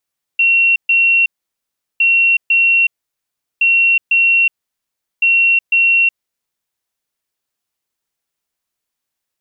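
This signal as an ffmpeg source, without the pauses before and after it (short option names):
-f lavfi -i "aevalsrc='0.376*sin(2*PI*2730*t)*clip(min(mod(mod(t,1.61),0.5),0.37-mod(mod(t,1.61),0.5))/0.005,0,1)*lt(mod(t,1.61),1)':d=6.44:s=44100"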